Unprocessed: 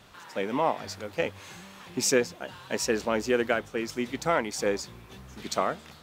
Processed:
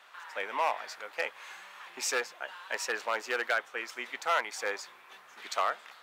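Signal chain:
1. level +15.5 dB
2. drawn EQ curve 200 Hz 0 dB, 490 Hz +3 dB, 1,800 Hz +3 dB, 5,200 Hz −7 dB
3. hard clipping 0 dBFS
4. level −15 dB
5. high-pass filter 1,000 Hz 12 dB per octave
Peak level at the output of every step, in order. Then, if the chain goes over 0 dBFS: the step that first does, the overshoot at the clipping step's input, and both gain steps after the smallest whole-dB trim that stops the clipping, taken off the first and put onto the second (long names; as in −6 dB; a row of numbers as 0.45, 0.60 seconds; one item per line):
+5.5, +8.0, 0.0, −15.0, −16.0 dBFS
step 1, 8.0 dB
step 1 +7.5 dB, step 4 −7 dB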